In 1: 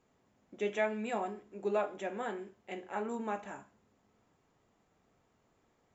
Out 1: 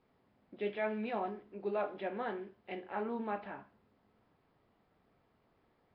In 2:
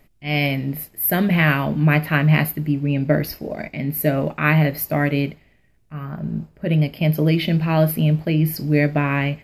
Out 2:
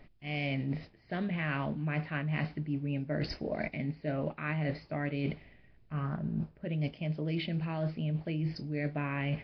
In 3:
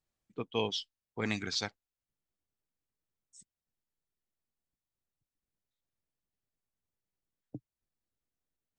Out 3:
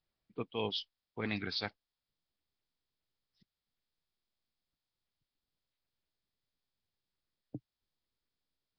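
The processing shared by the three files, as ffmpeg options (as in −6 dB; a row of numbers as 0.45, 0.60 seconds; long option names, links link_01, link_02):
-af "areverse,acompressor=threshold=-30dB:ratio=16,areverse" -ar 11025 -c:a nellymoser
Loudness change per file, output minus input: −2.0, −15.0, −3.0 LU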